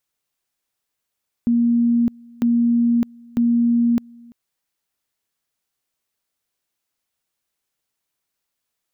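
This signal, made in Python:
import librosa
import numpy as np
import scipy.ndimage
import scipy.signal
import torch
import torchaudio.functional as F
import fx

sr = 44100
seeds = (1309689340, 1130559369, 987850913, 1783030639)

y = fx.two_level_tone(sr, hz=236.0, level_db=-13.5, drop_db=27.0, high_s=0.61, low_s=0.34, rounds=3)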